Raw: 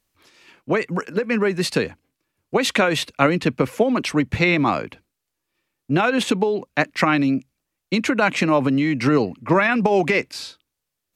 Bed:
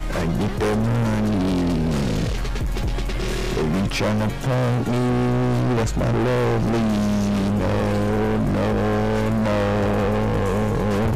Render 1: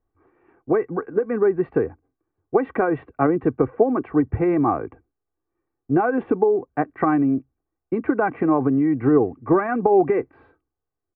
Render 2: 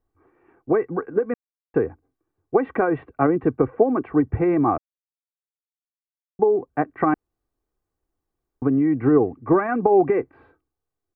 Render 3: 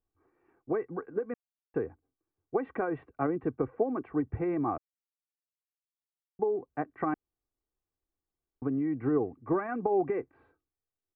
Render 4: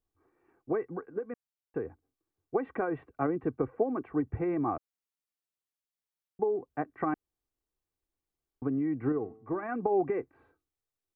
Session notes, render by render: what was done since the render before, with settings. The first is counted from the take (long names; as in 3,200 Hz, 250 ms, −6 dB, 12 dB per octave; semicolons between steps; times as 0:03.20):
Bessel low-pass filter 940 Hz, order 6; comb filter 2.6 ms, depth 60%
0:01.34–0:01.74: silence; 0:04.78–0:06.39: silence; 0:07.14–0:08.62: fill with room tone
level −11 dB
0:00.98–0:01.85: clip gain −3 dB; 0:09.12–0:09.63: tuned comb filter 110 Hz, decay 0.65 s, mix 50%